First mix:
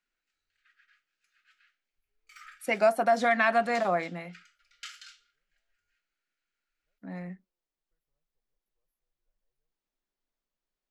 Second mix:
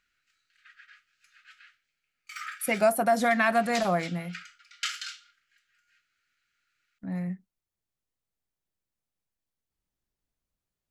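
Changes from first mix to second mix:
first voice: muted
second voice: remove band-pass filter 270–5,700 Hz
background +11.5 dB

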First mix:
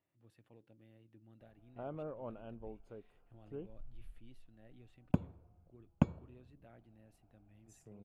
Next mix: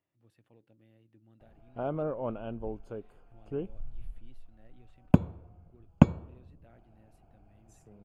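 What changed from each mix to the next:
background +11.0 dB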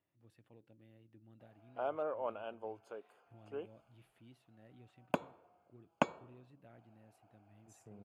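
background: add high-pass filter 630 Hz 12 dB per octave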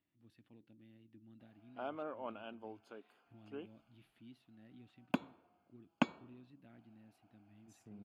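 master: add octave-band graphic EQ 125/250/500/1,000/4,000/8,000 Hz −4/+8/−9/−3/+5/−7 dB

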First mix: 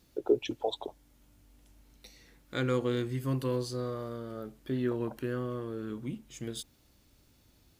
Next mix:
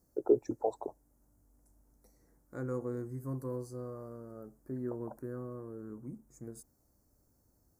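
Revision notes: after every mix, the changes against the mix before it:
second voice −7.0 dB
master: add Butterworth band-reject 3,100 Hz, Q 0.5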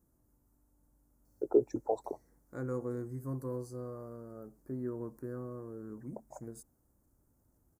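first voice: entry +1.25 s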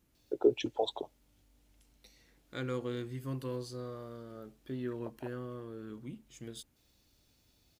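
first voice: entry −1.10 s
master: remove Butterworth band-reject 3,100 Hz, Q 0.5

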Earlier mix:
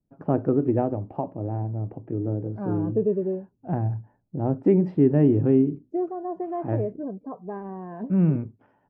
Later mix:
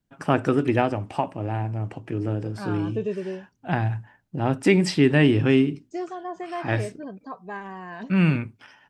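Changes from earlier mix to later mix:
second voice −5.0 dB
master: remove Chebyshev low-pass filter 540 Hz, order 2

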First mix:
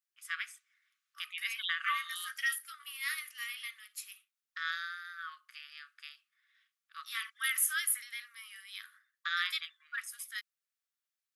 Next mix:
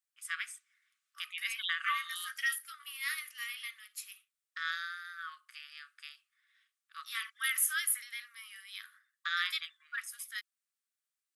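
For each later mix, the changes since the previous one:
first voice: add parametric band 8,600 Hz +8 dB 0.44 octaves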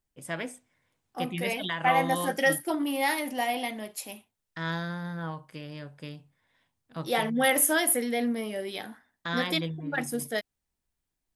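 second voice +6.0 dB
master: remove linear-phase brick-wall high-pass 1,100 Hz

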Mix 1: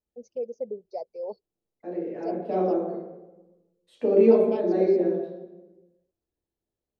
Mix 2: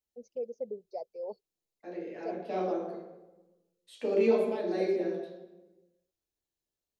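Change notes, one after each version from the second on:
first voice −4.5 dB
second voice: add tilt shelving filter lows −9.5 dB, about 1,500 Hz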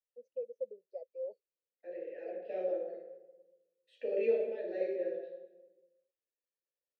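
second voice +4.0 dB
master: add formant filter e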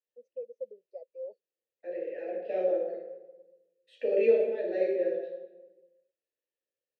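second voice +7.0 dB

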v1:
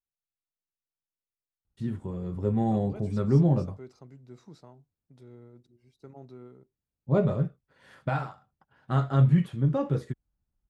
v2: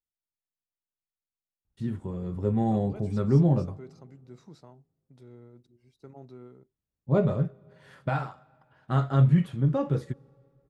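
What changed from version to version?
reverb: on, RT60 2.3 s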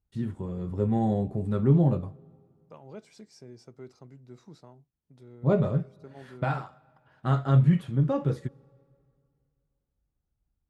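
first voice: entry −1.65 s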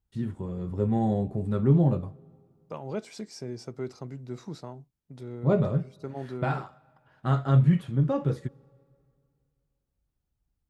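second voice +10.5 dB

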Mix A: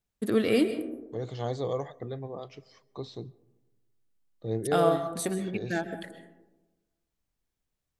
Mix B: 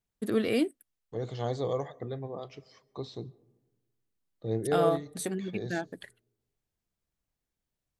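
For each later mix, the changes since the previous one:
first voice: send off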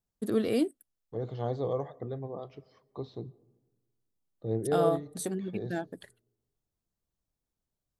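second voice: add low-pass filter 2,900 Hz 12 dB per octave
master: add parametric band 2,200 Hz −7.5 dB 1.2 octaves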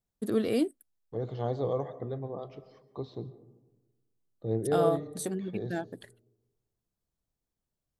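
second voice: send +9.5 dB

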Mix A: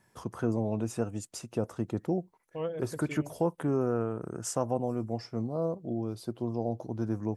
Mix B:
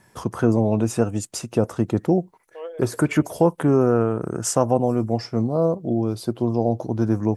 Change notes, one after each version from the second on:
first voice +11.0 dB
second voice: add linear-phase brick-wall high-pass 330 Hz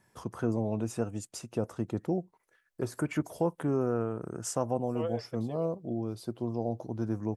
first voice −11.5 dB
second voice: entry +2.40 s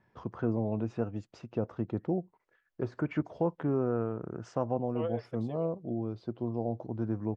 first voice: add high-frequency loss of the air 200 metres
master: add high-frequency loss of the air 95 metres

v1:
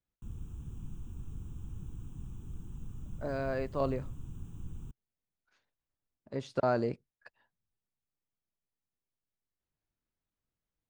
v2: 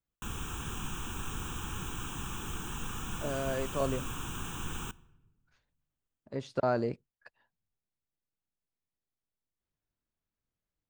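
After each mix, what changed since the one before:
background: remove drawn EQ curve 130 Hz 0 dB, 1,600 Hz −29 dB, 8,100 Hz −22 dB
reverb: on, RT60 1.0 s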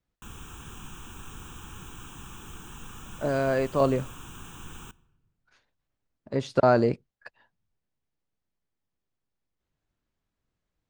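speech +9.0 dB
background −5.0 dB

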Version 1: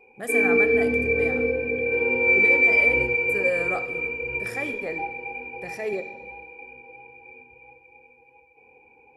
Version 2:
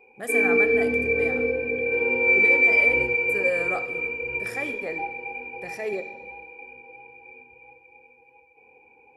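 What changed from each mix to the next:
master: add low-shelf EQ 190 Hz −5 dB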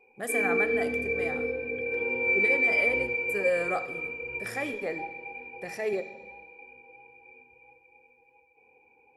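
background −6.5 dB

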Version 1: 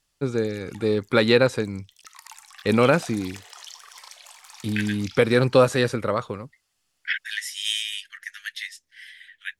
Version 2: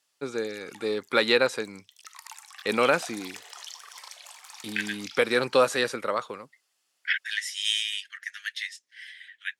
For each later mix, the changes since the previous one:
first voice: add low-shelf EQ 440 Hz −10.5 dB
second voice: add low-pass filter 9,100 Hz 12 dB per octave
master: add high-pass filter 210 Hz 12 dB per octave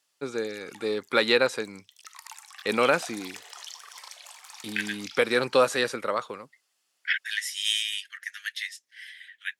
second voice: remove low-pass filter 9,100 Hz 12 dB per octave

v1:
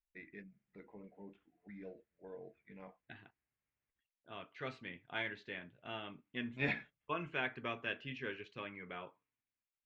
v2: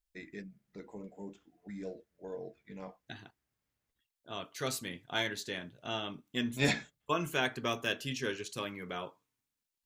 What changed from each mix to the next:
master: remove transistor ladder low-pass 2,900 Hz, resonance 40%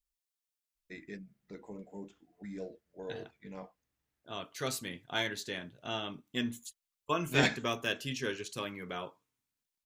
first voice: entry +0.75 s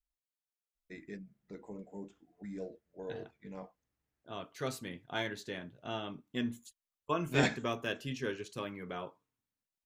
first voice: remove high-frequency loss of the air 78 metres
master: add high-shelf EQ 2,200 Hz −9 dB

